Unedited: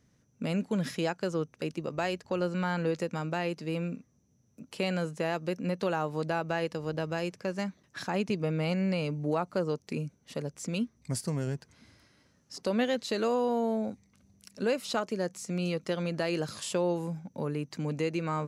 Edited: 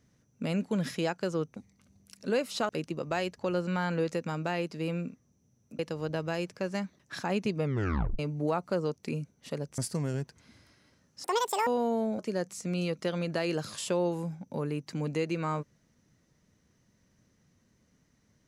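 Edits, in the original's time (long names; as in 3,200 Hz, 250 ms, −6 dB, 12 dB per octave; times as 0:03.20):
0:04.66–0:06.63: remove
0:08.47: tape stop 0.56 s
0:10.62–0:11.11: remove
0:12.57–0:13.38: play speed 189%
0:13.90–0:15.03: move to 0:01.56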